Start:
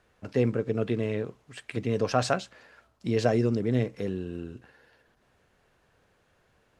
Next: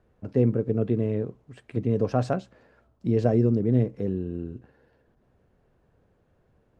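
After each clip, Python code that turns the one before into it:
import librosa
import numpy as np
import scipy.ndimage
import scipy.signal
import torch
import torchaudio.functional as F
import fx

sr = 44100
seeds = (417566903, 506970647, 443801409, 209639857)

y = fx.tilt_shelf(x, sr, db=9.5, hz=940.0)
y = y * librosa.db_to_amplitude(-4.0)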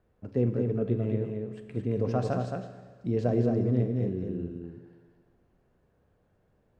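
y = x + 10.0 ** (-4.5 / 20.0) * np.pad(x, (int(220 * sr / 1000.0), 0))[:len(x)]
y = fx.rev_schroeder(y, sr, rt60_s=1.5, comb_ms=29, drr_db=9.0)
y = y * librosa.db_to_amplitude(-5.0)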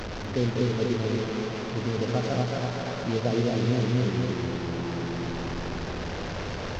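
y = fx.delta_mod(x, sr, bps=32000, step_db=-28.5)
y = fx.echo_feedback(y, sr, ms=244, feedback_pct=59, wet_db=-5.0)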